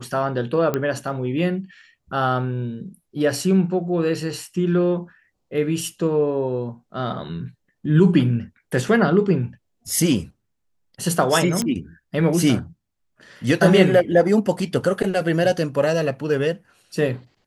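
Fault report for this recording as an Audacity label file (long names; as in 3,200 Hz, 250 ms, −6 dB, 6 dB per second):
0.740000	0.740000	click −9 dBFS
11.620000	11.620000	click −11 dBFS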